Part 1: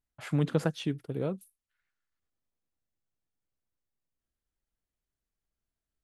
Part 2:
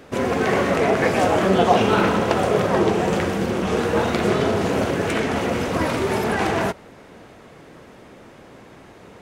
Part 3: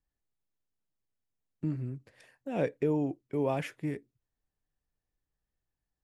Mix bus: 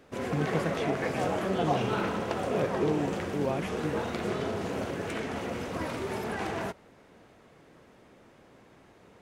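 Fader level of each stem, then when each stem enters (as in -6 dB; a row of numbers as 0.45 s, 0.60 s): -3.5 dB, -12.0 dB, -1.0 dB; 0.00 s, 0.00 s, 0.00 s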